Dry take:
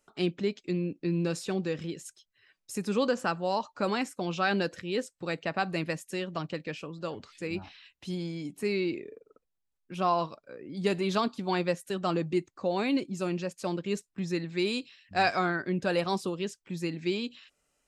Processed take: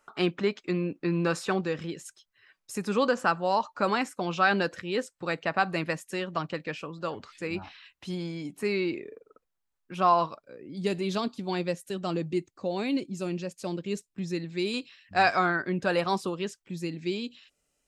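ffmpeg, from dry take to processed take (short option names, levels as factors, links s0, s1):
-af "asetnsamples=n=441:p=0,asendcmd='1.61 equalizer g 6.5;10.43 equalizer g -5;14.74 equalizer g 5;16.63 equalizer g -5.5',equalizer=f=1200:t=o:w=1.7:g=14"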